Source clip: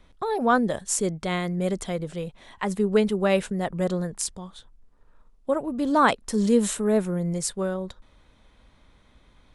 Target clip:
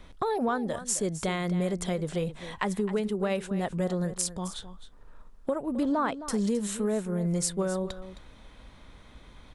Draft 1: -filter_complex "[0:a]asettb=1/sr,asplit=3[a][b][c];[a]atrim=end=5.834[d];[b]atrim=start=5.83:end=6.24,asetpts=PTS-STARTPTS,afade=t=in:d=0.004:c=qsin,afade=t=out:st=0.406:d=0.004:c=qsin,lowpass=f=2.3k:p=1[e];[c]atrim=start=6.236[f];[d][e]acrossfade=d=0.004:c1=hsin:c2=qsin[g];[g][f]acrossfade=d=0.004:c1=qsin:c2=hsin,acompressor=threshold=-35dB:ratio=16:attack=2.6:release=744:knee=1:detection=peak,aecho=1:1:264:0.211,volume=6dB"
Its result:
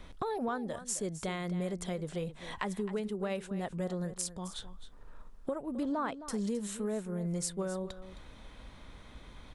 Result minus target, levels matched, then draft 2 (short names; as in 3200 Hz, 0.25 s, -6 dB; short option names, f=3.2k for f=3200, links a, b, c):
compressor: peak gain reduction +6.5 dB
-filter_complex "[0:a]asettb=1/sr,asplit=3[a][b][c];[a]atrim=end=5.834[d];[b]atrim=start=5.83:end=6.24,asetpts=PTS-STARTPTS,afade=t=in:d=0.004:c=qsin,afade=t=out:st=0.406:d=0.004:c=qsin,lowpass=f=2.3k:p=1[e];[c]atrim=start=6.236[f];[d][e]acrossfade=d=0.004:c1=hsin:c2=qsin[g];[g][f]acrossfade=d=0.004:c1=qsin:c2=hsin,acompressor=threshold=-28dB:ratio=16:attack=2.6:release=744:knee=1:detection=peak,aecho=1:1:264:0.211,volume=6dB"